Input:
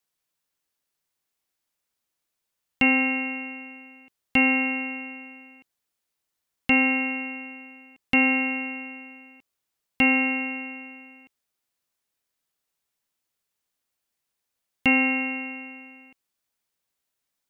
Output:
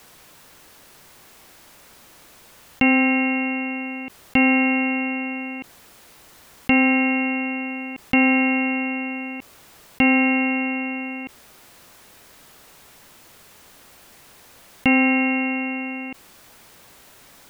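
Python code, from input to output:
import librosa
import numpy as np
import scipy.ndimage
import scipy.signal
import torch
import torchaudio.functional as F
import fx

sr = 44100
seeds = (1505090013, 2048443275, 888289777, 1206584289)

y = fx.high_shelf(x, sr, hz=2500.0, db=-9.0)
y = fx.env_flatten(y, sr, amount_pct=50)
y = y * librosa.db_to_amplitude(4.5)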